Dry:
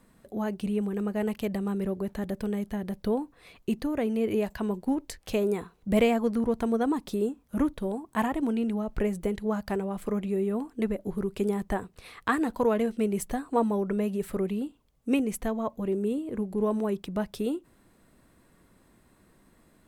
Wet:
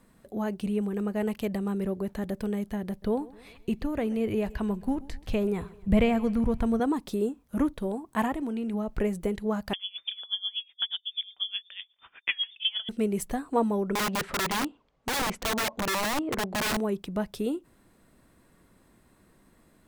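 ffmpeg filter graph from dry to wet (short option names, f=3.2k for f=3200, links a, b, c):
-filter_complex "[0:a]asettb=1/sr,asplit=3[a][b][c];[a]atrim=end=2.894[d];[b]atrim=start=2.89:end=6.8,asetpts=PTS-STARTPTS,afade=t=in:d=0.004:c=qsin,afade=t=out:st=3.906:d=0.004:c=qsin,acrossover=split=3800[e][f];[f]acompressor=threshold=-51dB:ratio=4:attack=1:release=60[g];[e][g]amix=inputs=2:normalize=0,asubboost=boost=6.5:cutoff=140,aecho=1:1:130|260|390|520:0.0944|0.0472|0.0236|0.0118,atrim=end_sample=172431[h];[c]atrim=start=6.796[i];[d][h]acrossfade=d=0.004:c1=hsin:c2=qsin[j];[j][i]acrossfade=d=0.004:c1=qsin:c2=hsin,asettb=1/sr,asplit=3[k][l][m];[k]atrim=end=8.324[n];[l]atrim=start=8.32:end=8.74,asetpts=PTS-STARTPTS,afade=t=in:d=0.004:c=qsin,afade=t=out:st=0.416:d=0.004:c=qsin,bandreject=f=179.7:t=h:w=4,bandreject=f=359.4:t=h:w=4,bandreject=f=539.1:t=h:w=4,bandreject=f=718.8:t=h:w=4,bandreject=f=898.5:t=h:w=4,bandreject=f=1.0782k:t=h:w=4,bandreject=f=1.2579k:t=h:w=4,bandreject=f=1.4376k:t=h:w=4,bandreject=f=1.6173k:t=h:w=4,bandreject=f=1.797k:t=h:w=4,bandreject=f=1.9767k:t=h:w=4,bandreject=f=2.1564k:t=h:w=4,bandreject=f=2.3361k:t=h:w=4,bandreject=f=2.5158k:t=h:w=4,bandreject=f=2.6955k:t=h:w=4,acompressor=threshold=-29dB:ratio=3:attack=3.2:release=140:knee=1:detection=peak[o];[m]atrim=start=8.736[p];[n][o]acrossfade=d=0.004:c1=hsin:c2=qsin[q];[q][p]acrossfade=d=0.004:c1=qsin:c2=hsin,asettb=1/sr,asplit=3[r][s][t];[r]atrim=end=9.734[u];[s]atrim=start=9.73:end=12.89,asetpts=PTS-STARTPTS,afade=t=in:d=0.004:c=qsin,afade=t=out:st=3.156:d=0.004:c=qsin,lowpass=f=3.1k:t=q:w=0.5098,lowpass=f=3.1k:t=q:w=0.6013,lowpass=f=3.1k:t=q:w=0.9,lowpass=f=3.1k:t=q:w=2.563,afreqshift=-3600,aeval=exprs='val(0)*pow(10,-24*(0.5-0.5*cos(2*PI*8.2*n/s))/20)':c=same[v];[t]atrim=start=12.886[w];[u][v]acrossfade=d=0.004:c1=hsin:c2=qsin[x];[x][w]acrossfade=d=0.004:c1=qsin:c2=hsin,asettb=1/sr,asplit=3[y][z][aa];[y]atrim=end=13.954[ab];[z]atrim=start=13.95:end=16.77,asetpts=PTS-STARTPTS,afade=t=in:d=0.004:c=qsin,afade=t=out:st=2.816:d=0.004:c=qsin,lowpass=6.4k,asplit=2[ac][ad];[ad]highpass=f=720:p=1,volume=17dB,asoftclip=type=tanh:threshold=-14dB[ae];[ac][ae]amix=inputs=2:normalize=0,lowpass=f=1.2k:p=1,volume=-6dB,aeval=exprs='(mod(15*val(0)+1,2)-1)/15':c=same[af];[aa]atrim=start=16.766[ag];[ab][af]acrossfade=d=0.004:c1=hsin:c2=qsin[ah];[ah][ag]acrossfade=d=0.004:c1=qsin:c2=hsin"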